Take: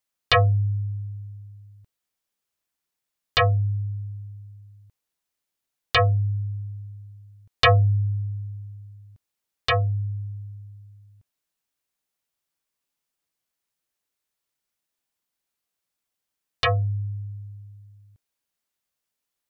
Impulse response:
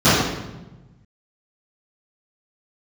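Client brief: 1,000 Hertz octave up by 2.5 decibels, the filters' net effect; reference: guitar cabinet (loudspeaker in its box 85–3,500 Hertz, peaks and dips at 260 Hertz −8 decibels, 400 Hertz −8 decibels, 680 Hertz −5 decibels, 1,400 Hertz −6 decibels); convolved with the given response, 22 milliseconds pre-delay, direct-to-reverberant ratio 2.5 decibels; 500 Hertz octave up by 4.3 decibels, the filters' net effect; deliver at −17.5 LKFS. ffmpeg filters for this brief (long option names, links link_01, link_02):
-filter_complex "[0:a]equalizer=frequency=500:width_type=o:gain=7.5,equalizer=frequency=1000:width_type=o:gain=5.5,asplit=2[link_01][link_02];[1:a]atrim=start_sample=2205,adelay=22[link_03];[link_02][link_03]afir=irnorm=-1:irlink=0,volume=-29dB[link_04];[link_01][link_04]amix=inputs=2:normalize=0,highpass=85,equalizer=frequency=260:width_type=q:width=4:gain=-8,equalizer=frequency=400:width_type=q:width=4:gain=-8,equalizer=frequency=680:width_type=q:width=4:gain=-5,equalizer=frequency=1400:width_type=q:width=4:gain=-6,lowpass=frequency=3500:width=0.5412,lowpass=frequency=3500:width=1.3066,volume=0.5dB"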